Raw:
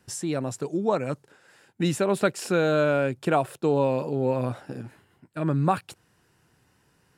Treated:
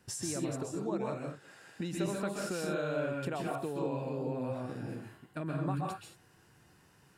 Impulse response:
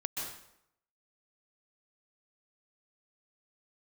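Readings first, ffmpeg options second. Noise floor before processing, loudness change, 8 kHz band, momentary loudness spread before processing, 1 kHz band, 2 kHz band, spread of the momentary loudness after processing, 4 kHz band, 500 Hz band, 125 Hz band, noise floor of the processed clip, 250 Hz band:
−66 dBFS, −11.0 dB, −4.5 dB, 13 LU, −11.5 dB, −10.5 dB, 10 LU, −8.0 dB, −11.5 dB, −9.0 dB, −64 dBFS, −8.5 dB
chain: -filter_complex "[0:a]acompressor=threshold=-35dB:ratio=4[link_01];[1:a]atrim=start_sample=2205,afade=type=out:start_time=0.29:duration=0.01,atrim=end_sample=13230[link_02];[link_01][link_02]afir=irnorm=-1:irlink=0,volume=-1dB"

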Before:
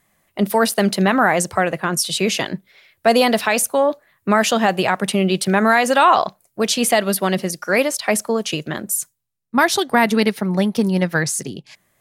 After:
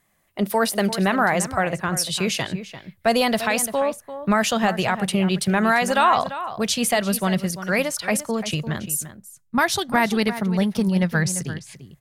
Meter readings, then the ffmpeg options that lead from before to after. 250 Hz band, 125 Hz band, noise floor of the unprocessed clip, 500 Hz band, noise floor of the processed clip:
−2.5 dB, −0.5 dB, −68 dBFS, −5.0 dB, −61 dBFS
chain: -filter_complex "[0:a]asplit=2[link_01][link_02];[link_02]adelay=344,volume=-12dB,highshelf=frequency=4000:gain=-7.74[link_03];[link_01][link_03]amix=inputs=2:normalize=0,asubboost=boost=7.5:cutoff=120,volume=-3.5dB"

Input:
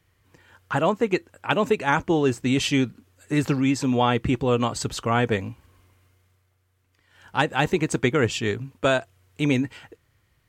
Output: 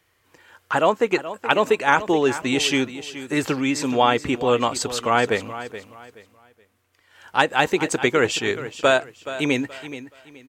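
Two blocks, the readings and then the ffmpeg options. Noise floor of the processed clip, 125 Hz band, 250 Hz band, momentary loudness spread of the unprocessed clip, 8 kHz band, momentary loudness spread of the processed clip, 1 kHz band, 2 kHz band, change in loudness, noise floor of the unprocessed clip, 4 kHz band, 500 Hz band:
−65 dBFS, −7.0 dB, −1.0 dB, 6 LU, +4.5 dB, 14 LU, +4.5 dB, +4.5 dB, +2.5 dB, −68 dBFS, +4.5 dB, +3.5 dB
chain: -af "bass=frequency=250:gain=-13,treble=frequency=4000:gain=0,aecho=1:1:425|850|1275:0.211|0.0592|0.0166,volume=4.5dB"

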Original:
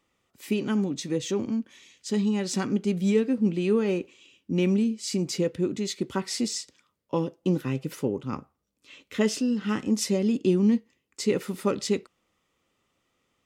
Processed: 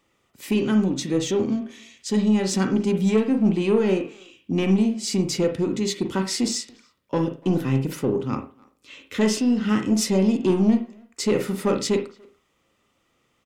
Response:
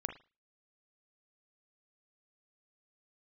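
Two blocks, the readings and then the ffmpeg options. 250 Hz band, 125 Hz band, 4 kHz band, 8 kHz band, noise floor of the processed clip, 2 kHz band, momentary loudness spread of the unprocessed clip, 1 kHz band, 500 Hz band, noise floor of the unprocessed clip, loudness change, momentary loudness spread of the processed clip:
+4.5 dB, +4.5 dB, +4.5 dB, +4.5 dB, −69 dBFS, +4.0 dB, 8 LU, +5.5 dB, +4.0 dB, −77 dBFS, +4.5 dB, 9 LU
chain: -filter_complex "[0:a]asoftclip=type=tanh:threshold=-18.5dB,asplit=2[link_01][link_02];[link_02]adelay=290,highpass=300,lowpass=3400,asoftclip=type=hard:threshold=-28.5dB,volume=-23dB[link_03];[link_01][link_03]amix=inputs=2:normalize=0[link_04];[1:a]atrim=start_sample=2205[link_05];[link_04][link_05]afir=irnorm=-1:irlink=0,volume=6dB"

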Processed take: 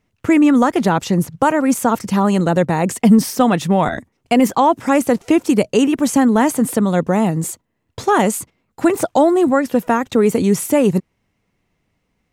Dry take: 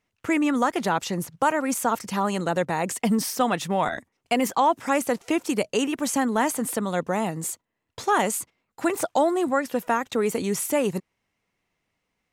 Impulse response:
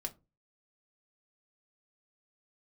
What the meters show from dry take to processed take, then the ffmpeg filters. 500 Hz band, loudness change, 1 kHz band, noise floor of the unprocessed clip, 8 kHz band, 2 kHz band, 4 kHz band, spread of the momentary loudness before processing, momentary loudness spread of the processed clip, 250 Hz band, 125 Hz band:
+8.5 dB, +9.0 dB, +6.0 dB, −79 dBFS, +4.0 dB, +4.5 dB, +4.0 dB, 6 LU, 6 LU, +12.0 dB, +13.0 dB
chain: -af "lowshelf=frequency=410:gain=11,volume=4dB"

